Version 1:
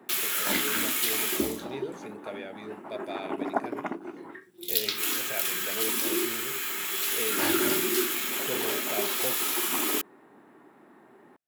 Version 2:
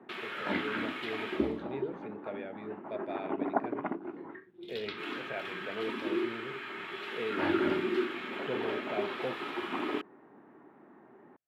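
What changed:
background: add high-frequency loss of the air 57 metres
master: add high-frequency loss of the air 470 metres

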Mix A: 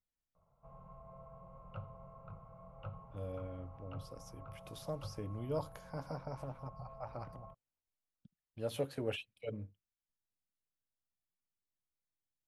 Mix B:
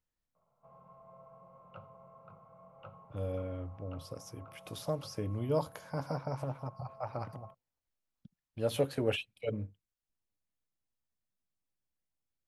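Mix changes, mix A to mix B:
speech +6.5 dB
background: add high-pass filter 190 Hz 12 dB per octave

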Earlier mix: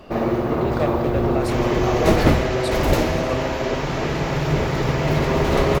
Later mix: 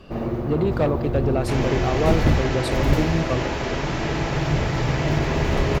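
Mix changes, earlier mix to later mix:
first sound −10.0 dB
master: add low-shelf EQ 250 Hz +11.5 dB

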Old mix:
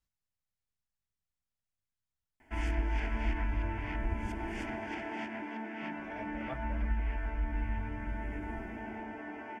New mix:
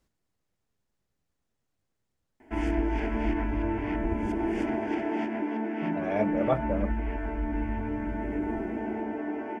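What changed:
speech +10.0 dB
master: add parametric band 370 Hz +14 dB 2.1 octaves

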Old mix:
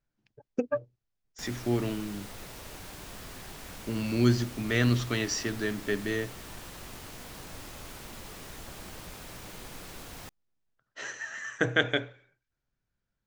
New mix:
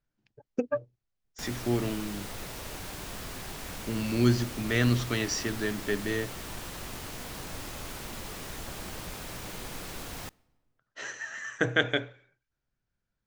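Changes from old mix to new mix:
background +3.5 dB
reverb: on, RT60 1.4 s

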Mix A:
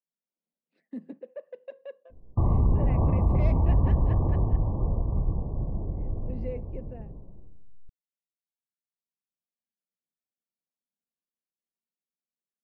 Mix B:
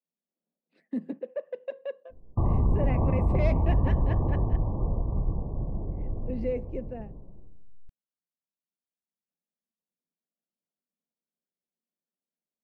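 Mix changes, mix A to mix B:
speech +6.5 dB
background: add parametric band 79 Hz −2.5 dB 1.6 octaves

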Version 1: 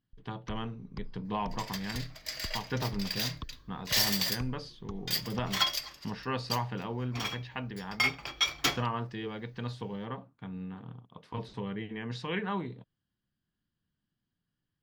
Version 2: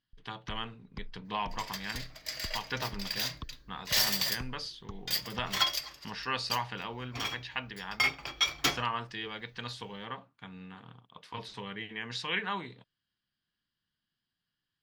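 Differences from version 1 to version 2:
speech: add tilt shelving filter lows −8.5 dB, about 910 Hz
first sound: send −11.0 dB

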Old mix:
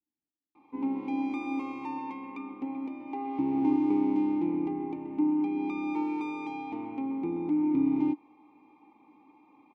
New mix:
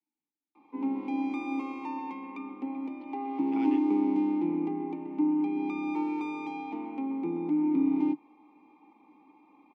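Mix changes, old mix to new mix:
speech: remove moving average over 36 samples
master: add Butterworth high-pass 150 Hz 96 dB per octave

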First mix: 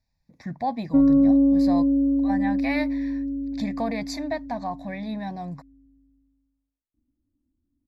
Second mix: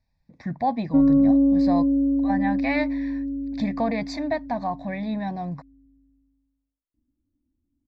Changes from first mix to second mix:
speech +3.5 dB
master: add high-frequency loss of the air 130 metres

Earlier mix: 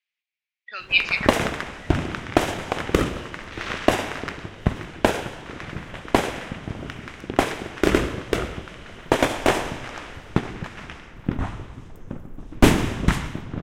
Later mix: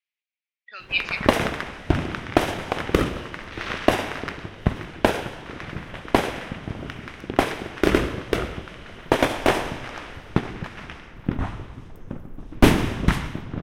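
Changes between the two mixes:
speech −5.0 dB
background: add parametric band 7,300 Hz −6.5 dB 0.43 octaves

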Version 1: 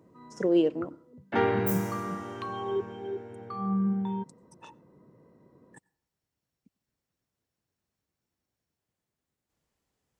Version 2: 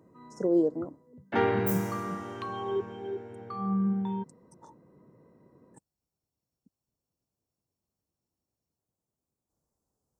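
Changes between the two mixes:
speech: add Butterworth band-reject 2,500 Hz, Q 0.54
reverb: off

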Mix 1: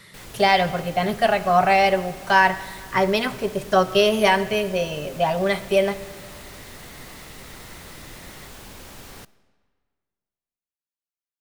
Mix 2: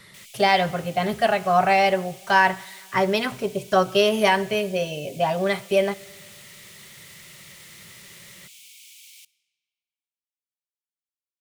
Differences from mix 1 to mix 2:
speech: send −9.0 dB
background: add Chebyshev high-pass with heavy ripple 2,200 Hz, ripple 3 dB

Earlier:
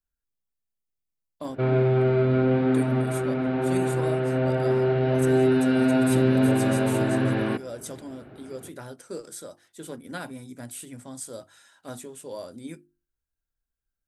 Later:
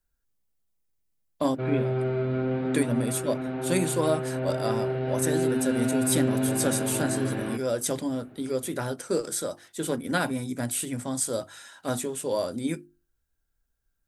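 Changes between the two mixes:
speech +9.5 dB
background −6.0 dB

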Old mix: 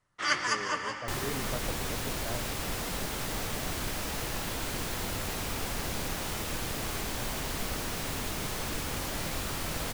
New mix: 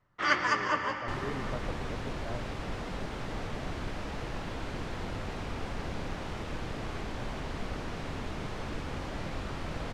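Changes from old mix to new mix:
first sound +6.0 dB
master: add head-to-tape spacing loss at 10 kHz 24 dB

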